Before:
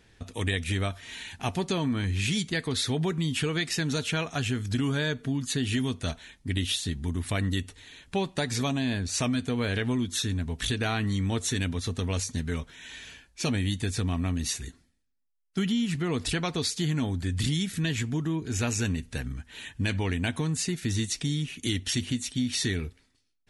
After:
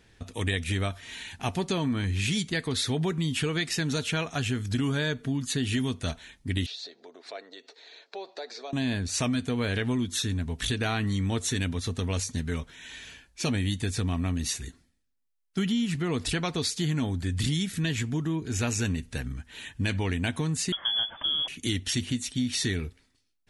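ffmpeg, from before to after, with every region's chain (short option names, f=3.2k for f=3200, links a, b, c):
-filter_complex "[0:a]asettb=1/sr,asplit=3[a][b][c];[a]atrim=end=6.664[d];[b]atrim=start=6.66:end=8.73,asetpts=PTS-STARTPTS,afade=t=in:d=0.004:c=qsin,afade=t=out:st=2.066:d=0.004:c=qsin,acompressor=threshold=-34dB:ratio=6:attack=3.2:release=140:knee=1:detection=peak,highpass=f=410:w=0.5412,highpass=f=410:w=1.3066,equalizer=f=430:t=q:w=4:g=7,equalizer=f=670:t=q:w=4:g=8,equalizer=f=1.1k:t=q:w=4:g=-3,equalizer=f=1.9k:t=q:w=4:g=-4,equalizer=f=3k:t=q:w=4:g=-9,equalizer=f=4.3k:t=q:w=4:g=7,lowpass=f=5.3k:w=0.5412,lowpass=f=5.3k:w=1.3066[e];[c]atrim=start=8.726[f];[d][e]acrossfade=d=0.004:c1=hsin:c2=qsin[g];[g][f]acrossfade=d=0.004:c1=qsin:c2=hsin,asettb=1/sr,asplit=3[h][i][j];[h]atrim=end=20.724[k];[i]atrim=start=20.72:end=21.48,asetpts=PTS-STARTPTS,afade=t=in:d=0.004:c=qsin,afade=t=out:st=0.756:d=0.004:c=qsin,aeval=exprs='val(0)+0.5*0.00562*sgn(val(0))':c=same,lowpass=f=3k:t=q:w=0.5098,lowpass=f=3k:t=q:w=0.6013,lowpass=f=3k:t=q:w=0.9,lowpass=f=3k:t=q:w=2.563,afreqshift=-3500[l];[j]atrim=start=21.476[m];[k][l]acrossfade=d=0.004:c1=hsin:c2=qsin[n];[n][m]acrossfade=d=0.004:c1=qsin:c2=hsin"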